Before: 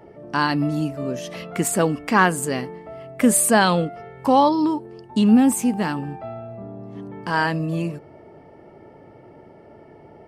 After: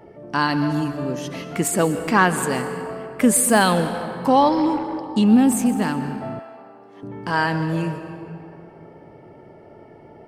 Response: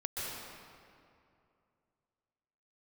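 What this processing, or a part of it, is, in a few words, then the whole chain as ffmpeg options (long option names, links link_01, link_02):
saturated reverb return: -filter_complex "[0:a]asplit=2[link_01][link_02];[1:a]atrim=start_sample=2205[link_03];[link_02][link_03]afir=irnorm=-1:irlink=0,asoftclip=type=tanh:threshold=-10dB,volume=-9dB[link_04];[link_01][link_04]amix=inputs=2:normalize=0,asettb=1/sr,asplit=3[link_05][link_06][link_07];[link_05]atrim=end=6.394[link_08];[link_06]atrim=start=6.39:end=7.03,asetpts=PTS-STARTPTS,afade=type=in:duration=0.004:curve=qsin,afade=type=out:start_time=0.636:duration=0.004:curve=qsin,highpass=560[link_09];[link_07]atrim=start=7.026[link_10];[link_08][link_09]acrossfade=duration=0.004:curve1=hsin:curve2=qsin[link_11];[link_11][link_10]acrossfade=duration=0.004:curve1=qsin:curve2=hsin,volume=-1.5dB"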